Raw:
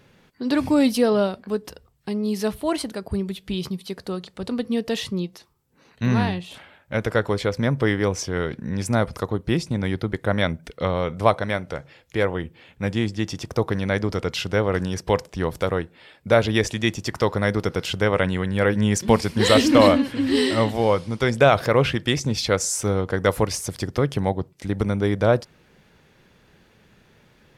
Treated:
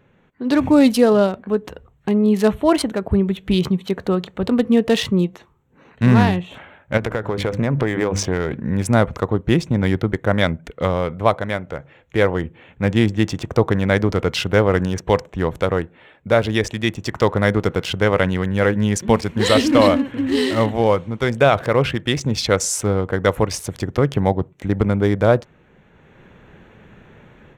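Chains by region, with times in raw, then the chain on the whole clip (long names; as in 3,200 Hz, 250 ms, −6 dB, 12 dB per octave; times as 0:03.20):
0:06.97–0:08.64: mains-hum notches 50/100/150/200/250/300 Hz + downward compressor 12 to 1, threshold −24 dBFS + highs frequency-modulated by the lows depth 0.12 ms
whole clip: adaptive Wiener filter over 9 samples; automatic gain control; level −1 dB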